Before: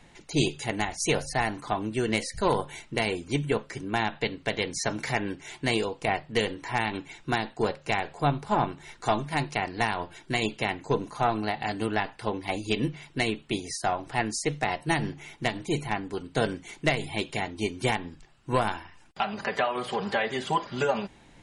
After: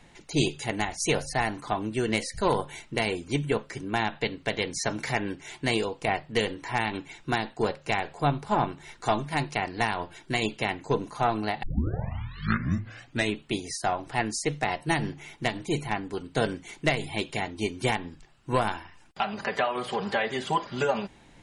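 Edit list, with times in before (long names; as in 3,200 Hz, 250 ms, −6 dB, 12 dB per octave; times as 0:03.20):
0:11.63: tape start 1.73 s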